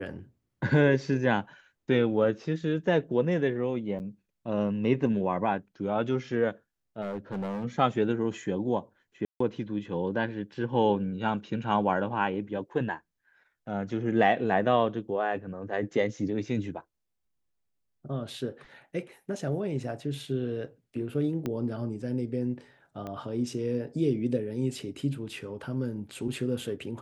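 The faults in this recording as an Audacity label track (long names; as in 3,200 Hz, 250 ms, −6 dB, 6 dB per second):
3.990000	4.000000	drop-out 9.4 ms
7.010000	7.650000	clipping −29.5 dBFS
9.250000	9.400000	drop-out 154 ms
21.460000	21.460000	click −19 dBFS
23.070000	23.070000	click −25 dBFS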